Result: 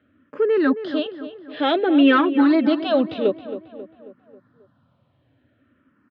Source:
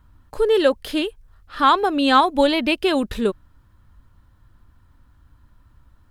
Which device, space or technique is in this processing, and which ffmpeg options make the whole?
barber-pole phaser into a guitar amplifier: -filter_complex "[0:a]lowpass=8k,asettb=1/sr,asplit=3[a][b][c];[a]atrim=end=1.054[d];[b]atrim=start=1.05:end=2.79,asetpts=PTS-STARTPTS,afade=t=in:d=0.004:c=qsin,afade=t=out:st=1.736:d=0.004:c=qsin,aecho=1:1:6:0.57,atrim=end_sample=76734[e];[c]atrim=start=2.786[f];[d][e]acrossfade=d=0.004:c1=hsin:c2=qsin[g];[g][f]acrossfade=d=0.004:c1=qsin:c2=hsin,asplit=2[h][i];[i]afreqshift=-0.54[j];[h][j]amix=inputs=2:normalize=1,asoftclip=type=tanh:threshold=-13dB,highpass=f=110:w=0.5412,highpass=f=110:w=1.3066,highpass=110,equalizer=f=260:t=q:w=4:g=8,equalizer=f=600:t=q:w=4:g=8,equalizer=f=940:t=q:w=4:g=-9,lowpass=f=3.4k:w=0.5412,lowpass=f=3.4k:w=1.3066,asplit=2[k][l];[l]adelay=270,lowpass=f=2.6k:p=1,volume=-12dB,asplit=2[m][n];[n]adelay=270,lowpass=f=2.6k:p=1,volume=0.52,asplit=2[o][p];[p]adelay=270,lowpass=f=2.6k:p=1,volume=0.52,asplit=2[q][r];[r]adelay=270,lowpass=f=2.6k:p=1,volume=0.52,asplit=2[s][t];[t]adelay=270,lowpass=f=2.6k:p=1,volume=0.52[u];[k][m][o][q][s][u]amix=inputs=6:normalize=0,volume=3dB"

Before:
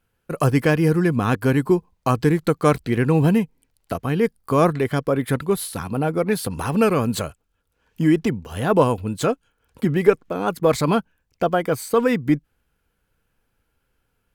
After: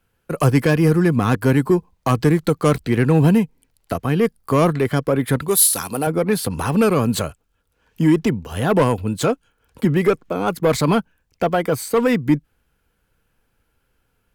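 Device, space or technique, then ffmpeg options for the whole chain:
one-band saturation: -filter_complex "[0:a]asettb=1/sr,asplit=3[a][b][c];[a]atrim=end=5.484[d];[b]atrim=start=5.48:end=6.07,asetpts=PTS-STARTPTS,afade=t=in:d=0.004:c=qsin,afade=t=out:st=0.586:d=0.004:c=qsin,bass=f=250:g=-10,treble=f=4k:g=14[e];[c]atrim=start=6.066[f];[d][e]acrossfade=d=0.004:c1=hsin:c2=qsin[g];[g][f]acrossfade=d=0.004:c1=qsin:c2=hsin,acrossover=split=210|4000[h][i][j];[i]asoftclip=type=tanh:threshold=-14dB[k];[h][k][j]amix=inputs=3:normalize=0,volume=3.5dB"

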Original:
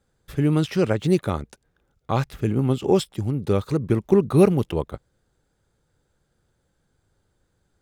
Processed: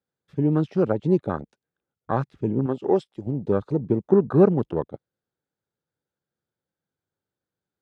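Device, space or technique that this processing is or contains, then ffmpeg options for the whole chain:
over-cleaned archive recording: -filter_complex "[0:a]highpass=140,lowpass=5.5k,afwtdn=0.0316,asettb=1/sr,asplit=3[a][b][c];[a]atrim=end=2.664[d];[b]atrim=start=2.66:end=3.27,asetpts=PTS-STARTPTS,afade=t=in:d=0.004:c=qsin,afade=t=out:st=0.606:d=0.004:c=qsin,bass=f=250:g=-9,treble=f=4k:g=1[e];[c]atrim=start=3.266[f];[d][e]acrossfade=d=0.004:c1=hsin:c2=qsin[g];[g][f]acrossfade=d=0.004:c1=qsin:c2=hsin"

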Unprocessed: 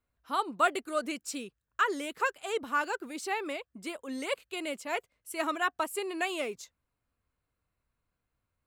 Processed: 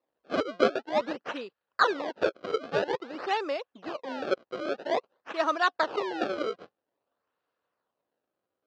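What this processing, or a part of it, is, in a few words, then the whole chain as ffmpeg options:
circuit-bent sampling toy: -af "acrusher=samples=28:mix=1:aa=0.000001:lfo=1:lforange=44.8:lforate=0.5,highpass=410,equalizer=f=530:t=q:w=4:g=4,equalizer=f=2.2k:t=q:w=4:g=-8,equalizer=f=3.4k:t=q:w=4:g=-4,lowpass=f=4.1k:w=0.5412,lowpass=f=4.1k:w=1.3066,volume=6dB"

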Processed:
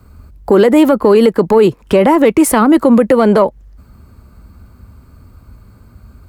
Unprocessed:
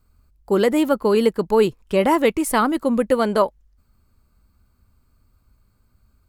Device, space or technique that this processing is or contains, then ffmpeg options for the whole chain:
mastering chain: -filter_complex "[0:a]highpass=51,equalizer=f=1.9k:t=o:w=0.77:g=2,acrossover=split=140|410[a][b][c];[a]acompressor=threshold=-51dB:ratio=4[d];[b]acompressor=threshold=-28dB:ratio=4[e];[c]acompressor=threshold=-22dB:ratio=4[f];[d][e][f]amix=inputs=3:normalize=0,acompressor=threshold=-28dB:ratio=1.5,asoftclip=type=tanh:threshold=-15.5dB,tiltshelf=f=1.4k:g=5,alimiter=level_in=19dB:limit=-1dB:release=50:level=0:latency=1,volume=-1dB"

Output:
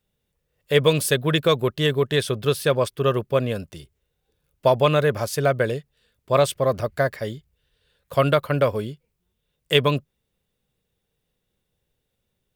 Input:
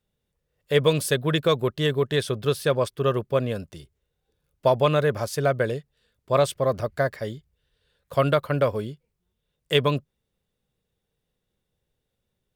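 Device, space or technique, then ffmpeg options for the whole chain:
presence and air boost: -af "equalizer=f=2.6k:t=o:w=0.77:g=2.5,highshelf=f=11k:g=5.5,volume=2dB"

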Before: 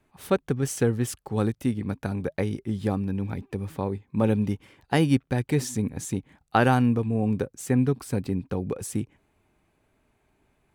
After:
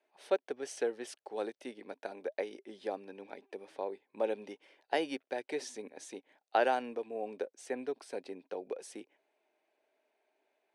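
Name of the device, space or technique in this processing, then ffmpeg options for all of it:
phone speaker on a table: -af "highpass=f=380:w=0.5412,highpass=f=380:w=1.3066,equalizer=f=630:t=q:w=4:g=6,equalizer=f=1.2k:t=q:w=4:g=-9,equalizer=f=7.3k:t=q:w=4:g=-10,lowpass=f=8.3k:w=0.5412,lowpass=f=8.3k:w=1.3066,volume=-7dB"

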